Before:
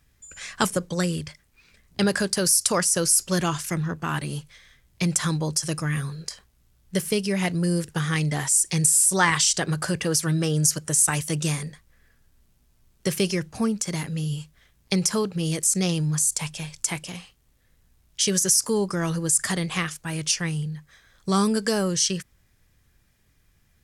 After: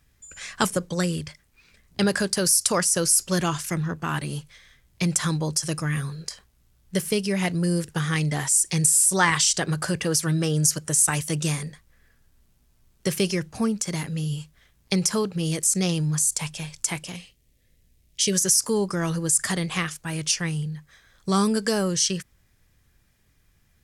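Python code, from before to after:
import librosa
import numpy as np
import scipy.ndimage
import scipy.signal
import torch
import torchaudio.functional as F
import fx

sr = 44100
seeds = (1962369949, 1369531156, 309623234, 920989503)

y = fx.band_shelf(x, sr, hz=1100.0, db=-11.0, octaves=1.3, at=(17.16, 18.33))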